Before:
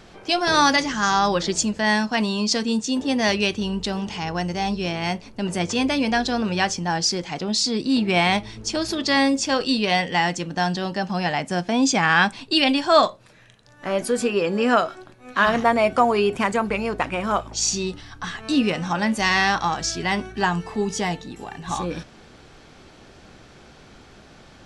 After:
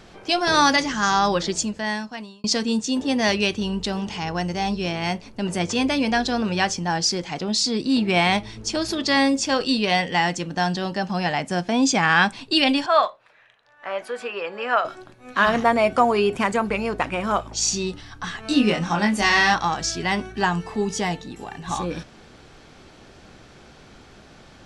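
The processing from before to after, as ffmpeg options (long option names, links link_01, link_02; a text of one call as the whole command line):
ffmpeg -i in.wav -filter_complex "[0:a]asettb=1/sr,asplit=3[link_01][link_02][link_03];[link_01]atrim=end=12.864[link_04];[link_02]atrim=start=12.86:end=14.85,asetpts=PTS-STARTPTS,afade=type=in:duration=0.004:curve=qsin,afade=type=out:start_time=1.986:duration=0.004:curve=qsin,acrossover=split=550 3300:gain=0.0891 1 0.126[link_05][link_06][link_07];[link_05][link_06][link_07]amix=inputs=3:normalize=0[link_08];[link_03]atrim=start=14.846[link_09];[link_04][link_08]acrossfade=duration=0.004:curve1=hsin:curve2=qsin[link_10];[link_10][link_09]acrossfade=duration=0.004:curve1=qsin:curve2=hsin,asettb=1/sr,asplit=3[link_11][link_12][link_13];[link_11]atrim=end=18.434[link_14];[link_12]atrim=start=18.43:end=19.54,asetpts=PTS-STARTPTS,afade=type=in:duration=0.004:curve=qsin,afade=type=out:start_time=1.106:duration=0.004:curve=qsin,asplit=2[link_15][link_16];[link_16]adelay=24,volume=-3.5dB[link_17];[link_15][link_17]amix=inputs=2:normalize=0,atrim=end_sample=48951[link_18];[link_13]atrim=start=19.536[link_19];[link_14][link_18]acrossfade=duration=0.004:curve1=hsin:curve2=qsin[link_20];[link_20][link_19]acrossfade=duration=0.004:curve1=qsin:curve2=hsin,asplit=2[link_21][link_22];[link_21]atrim=end=2.44,asetpts=PTS-STARTPTS,afade=type=out:start_time=1.34:duration=1.1[link_23];[link_22]atrim=start=2.44,asetpts=PTS-STARTPTS,afade=type=in:duration=0.004:curve=hsin[link_24];[link_23][link_24]concat=n=2:v=0:a=1" out.wav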